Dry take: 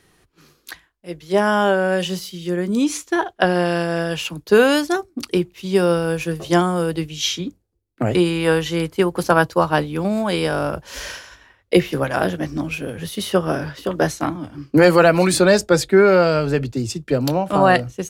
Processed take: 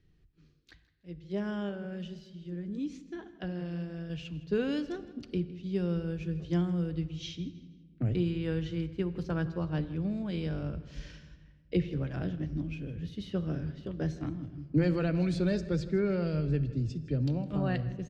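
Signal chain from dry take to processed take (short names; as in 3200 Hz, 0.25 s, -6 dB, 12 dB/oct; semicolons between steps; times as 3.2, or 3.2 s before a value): passive tone stack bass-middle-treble 10-0-1; 1.69–4.1 flange 1.7 Hz, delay 0.4 ms, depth 4.9 ms, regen -78%; air absorption 180 m; feedback echo 0.161 s, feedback 34%, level -18.5 dB; shoebox room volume 1900 m³, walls mixed, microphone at 0.42 m; gain +6.5 dB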